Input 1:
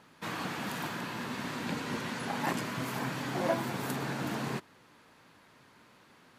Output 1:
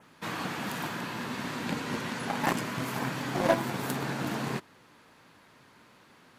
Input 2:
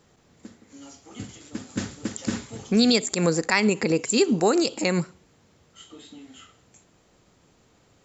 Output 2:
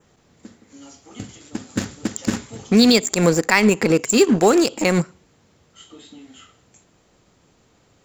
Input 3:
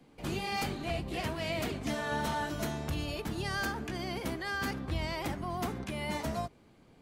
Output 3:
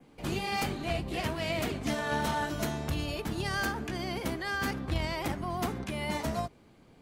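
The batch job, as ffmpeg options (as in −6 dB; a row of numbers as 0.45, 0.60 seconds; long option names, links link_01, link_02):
-filter_complex "[0:a]adynamicequalizer=threshold=0.00447:dfrequency=4300:dqfactor=2.4:tfrequency=4300:tqfactor=2.4:attack=5:release=100:ratio=0.375:range=2.5:mode=cutabove:tftype=bell,asplit=2[link_01][link_02];[link_02]acrusher=bits=3:mix=0:aa=0.5,volume=-5dB[link_03];[link_01][link_03]amix=inputs=2:normalize=0,volume=2dB"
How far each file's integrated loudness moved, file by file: +3.0, +5.5, +2.5 LU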